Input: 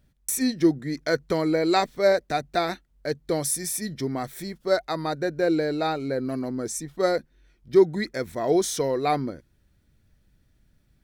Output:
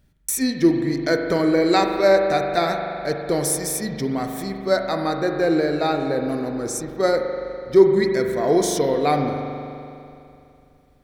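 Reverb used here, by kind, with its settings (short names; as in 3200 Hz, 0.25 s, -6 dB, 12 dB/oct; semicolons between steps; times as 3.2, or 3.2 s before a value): spring tank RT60 2.7 s, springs 41 ms, chirp 60 ms, DRR 3.5 dB; gain +3 dB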